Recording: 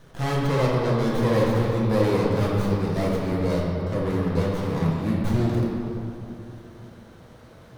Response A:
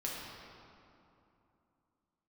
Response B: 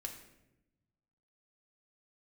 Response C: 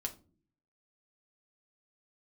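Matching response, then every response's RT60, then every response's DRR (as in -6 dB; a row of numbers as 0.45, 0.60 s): A; 2.8 s, 0.90 s, not exponential; -5.0, 2.0, 1.0 dB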